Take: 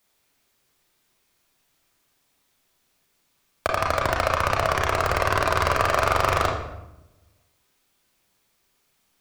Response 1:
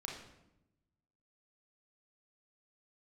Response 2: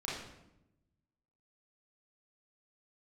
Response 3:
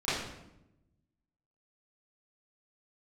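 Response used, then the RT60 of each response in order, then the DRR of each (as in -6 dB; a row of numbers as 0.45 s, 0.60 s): 1; 0.90 s, 0.90 s, 0.90 s; -1.0 dB, -6.5 dB, -15.5 dB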